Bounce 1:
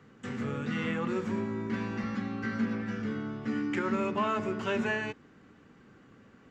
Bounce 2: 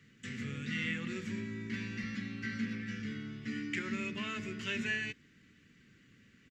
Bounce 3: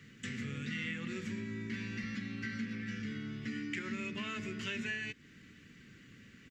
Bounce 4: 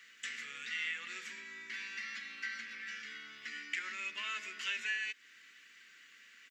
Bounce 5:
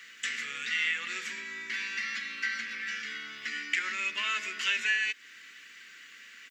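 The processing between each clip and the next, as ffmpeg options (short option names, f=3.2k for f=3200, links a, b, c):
-af "firequalizer=gain_entry='entry(150,0);entry(790,-21);entry(1900,6)':delay=0.05:min_phase=1,volume=-4dB"
-af "acompressor=threshold=-46dB:ratio=2.5,volume=6dB"
-af "highpass=1.2k,volume=3.5dB"
-af "bandreject=f=780:w=26,volume=8.5dB"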